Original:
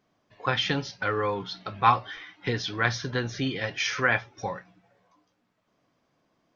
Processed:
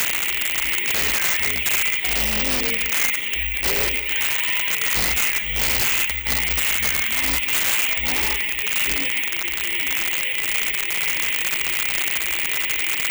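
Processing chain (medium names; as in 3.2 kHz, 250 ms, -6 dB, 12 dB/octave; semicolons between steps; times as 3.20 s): one-bit delta coder 32 kbps, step -35.5 dBFS; reverb removal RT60 0.59 s; FFT filter 110 Hz 0 dB, 200 Hz -26 dB, 870 Hz +4 dB, 1.9 kHz -19 dB, 2.7 kHz -28 dB, 4 kHz +12 dB; harmonic-percussive split percussive -18 dB; resonant high shelf 1.5 kHz +10.5 dB, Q 3; in parallel at -1 dB: peak limiter -23.5 dBFS, peak gain reduction 8 dB; on the sum: compression 5:1, threshold -27 dBFS, peak gain reduction 7.5 dB; integer overflow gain 23.5 dB; tape echo 88 ms, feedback 82%, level -14 dB, low-pass 2.5 kHz; on a send at -18 dB: reverberation RT60 0.30 s, pre-delay 91 ms; on the sum: speed mistake 15 ips tape played at 7.5 ips; careless resampling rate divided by 2×, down none, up zero stuff; trim +7 dB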